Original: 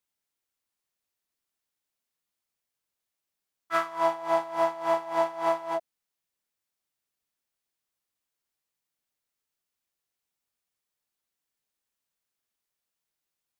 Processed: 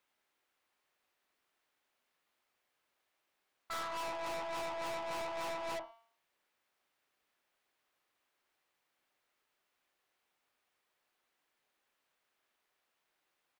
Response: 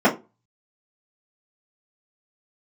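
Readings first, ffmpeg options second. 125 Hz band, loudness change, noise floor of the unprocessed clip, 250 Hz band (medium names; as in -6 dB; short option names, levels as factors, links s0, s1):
-6.0 dB, -11.5 dB, under -85 dBFS, -12.0 dB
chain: -filter_complex "[0:a]bass=f=250:g=-12,treble=f=4000:g=-14,bandreject=f=228.5:t=h:w=4,bandreject=f=457:t=h:w=4,bandreject=f=685.5:t=h:w=4,bandreject=f=914:t=h:w=4,bandreject=f=1142.5:t=h:w=4,bandreject=f=1371:t=h:w=4,bandreject=f=1599.5:t=h:w=4,bandreject=f=1828:t=h:w=4,bandreject=f=2056.5:t=h:w=4,bandreject=f=2285:t=h:w=4,bandreject=f=2513.5:t=h:w=4,bandreject=f=2742:t=h:w=4,bandreject=f=2970.5:t=h:w=4,bandreject=f=3199:t=h:w=4,bandreject=f=3427.5:t=h:w=4,bandreject=f=3656:t=h:w=4,bandreject=f=3884.5:t=h:w=4,bandreject=f=4113:t=h:w=4,bandreject=f=4341.5:t=h:w=4,bandreject=f=4570:t=h:w=4,bandreject=f=4798.5:t=h:w=4,bandreject=f=5027:t=h:w=4,bandreject=f=5255.5:t=h:w=4,bandreject=f=5484:t=h:w=4,bandreject=f=5712.5:t=h:w=4,bandreject=f=5941:t=h:w=4,bandreject=f=6169.5:t=h:w=4,bandreject=f=6398:t=h:w=4,bandreject=f=6626.5:t=h:w=4,acompressor=threshold=0.0251:ratio=5,asplit=2[s0][s1];[s1]adelay=63,lowpass=f=2000:p=1,volume=0.0891,asplit=2[s2][s3];[s3]adelay=63,lowpass=f=2000:p=1,volume=0.22[s4];[s0][s2][s4]amix=inputs=3:normalize=0,asplit=2[s5][s6];[1:a]atrim=start_sample=2205[s7];[s6][s7]afir=irnorm=-1:irlink=0,volume=0.00708[s8];[s5][s8]amix=inputs=2:normalize=0,aeval=exprs='(tanh(355*val(0)+0.3)-tanh(0.3))/355':c=same,volume=4.22"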